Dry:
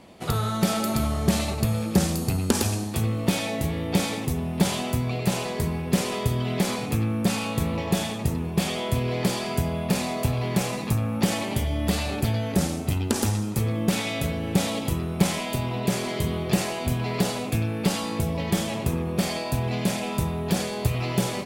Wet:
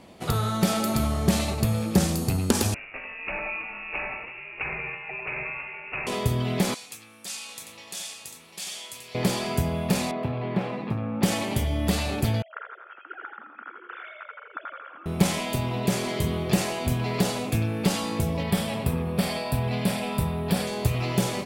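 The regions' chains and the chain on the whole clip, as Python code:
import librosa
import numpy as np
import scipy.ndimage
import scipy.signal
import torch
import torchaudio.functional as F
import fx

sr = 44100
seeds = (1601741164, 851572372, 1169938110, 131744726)

y = fx.chain(x, sr, fx.highpass(hz=510.0, slope=24),
    fx.freq_invert(carrier_hz=3100), at=(2.74, 6.07))
y = fx.chain(y, sr, fx.bandpass_q(hz=7200.0, q=0.83),
    fx.echo_single(ms=747, db=-6.5), at=(6.74, 9.15))
y = fx.chain(y, sr, fx.highpass(hz=150.0, slope=12),
    fx.air_absorb(metres=420.0), at=(10.11, 11.23))
y = fx.chain(y, sr, fx.sine_speech(),
    fx.bandpass_q(hz=1400.0, q=10.0),
    fx.echo_feedback(ms=83, feedback_pct=52, wet_db=-5.5), at=(12.42, 15.06))
y = fx.chain(y, sr, fx.peak_eq(hz=6500.0, db=-13.0, octaves=0.29),
    fx.notch(hz=340.0, q=5.6), at=(18.43, 20.67))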